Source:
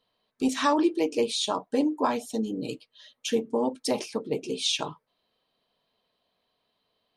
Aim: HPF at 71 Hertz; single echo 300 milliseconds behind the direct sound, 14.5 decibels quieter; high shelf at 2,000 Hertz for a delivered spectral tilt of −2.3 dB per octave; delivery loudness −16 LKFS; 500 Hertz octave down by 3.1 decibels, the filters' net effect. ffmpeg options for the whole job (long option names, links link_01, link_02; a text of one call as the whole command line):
ffmpeg -i in.wav -af "highpass=71,equalizer=frequency=500:width_type=o:gain=-4,highshelf=frequency=2000:gain=4.5,aecho=1:1:300:0.188,volume=11.5dB" out.wav